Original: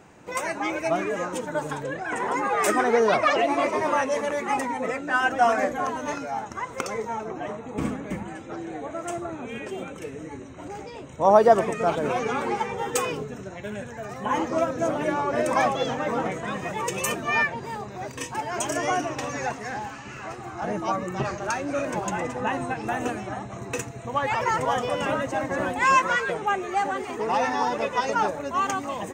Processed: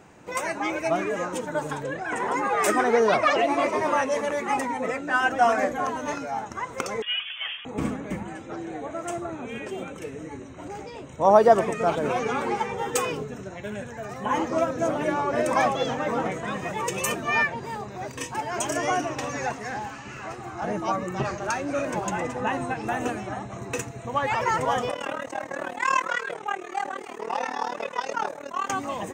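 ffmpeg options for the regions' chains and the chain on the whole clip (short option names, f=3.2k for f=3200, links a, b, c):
-filter_complex "[0:a]asettb=1/sr,asplit=3[a][b][c];[a]atrim=end=7.024[d];[b]atrim=start=7.02:end=7.65,asetpts=PTS-STARTPTS,afade=t=in:d=0.004:c=qsin,afade=t=out:st=0.626:d=0.004:c=qsin,highpass=990,acontrast=82,lowpass=f=3.2k:t=q:w=0.5098,lowpass=f=3.2k:t=q:w=0.6013,lowpass=f=3.2k:t=q:w=0.9,lowpass=f=3.2k:t=q:w=2.563,afreqshift=-3800[e];[c]atrim=start=7.646[f];[d][e]acrossfade=d=0.004:c1=hsin:c2=qsin[g];[g][f]acrossfade=d=0.004:c1=qsin:c2=hsin,asettb=1/sr,asplit=3[h][i][j];[h]atrim=end=24.914[k];[i]atrim=start=24.91:end=28.7,asetpts=PTS-STARTPTS,afade=t=in:d=0.004:c=qsin,afade=t=out:st=3.786:d=0.004:c=qsin,highpass=f=430:p=1,tremolo=f=38:d=0.889[l];[j]atrim=start=28.696[m];[k][l]acrossfade=d=0.004:c1=hsin:c2=qsin[n];[n][m]acrossfade=d=0.004:c1=qsin:c2=hsin"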